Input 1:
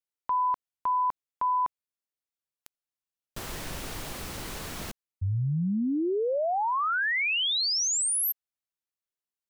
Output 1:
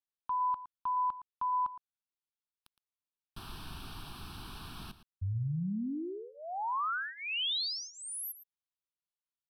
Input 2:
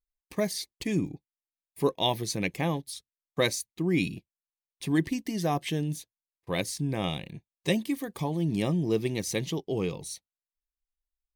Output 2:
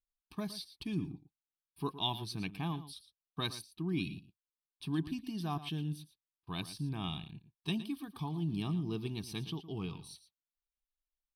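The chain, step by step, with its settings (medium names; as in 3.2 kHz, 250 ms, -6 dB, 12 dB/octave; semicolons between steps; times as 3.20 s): low-pass 11 kHz 12 dB/octave; static phaser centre 2 kHz, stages 6; delay 114 ms -14 dB; trim -5.5 dB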